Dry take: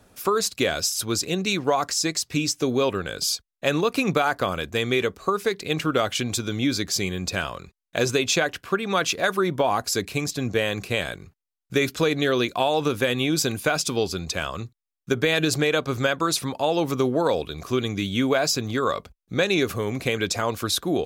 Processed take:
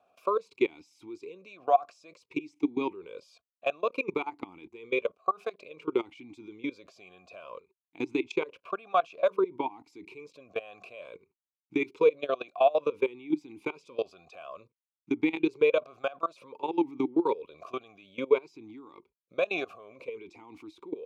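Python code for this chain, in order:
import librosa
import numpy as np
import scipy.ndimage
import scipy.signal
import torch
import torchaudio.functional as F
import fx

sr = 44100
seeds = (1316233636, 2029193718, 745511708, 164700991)

y = fx.level_steps(x, sr, step_db=21)
y = fx.vowel_sweep(y, sr, vowels='a-u', hz=0.56)
y = y * librosa.db_to_amplitude(7.0)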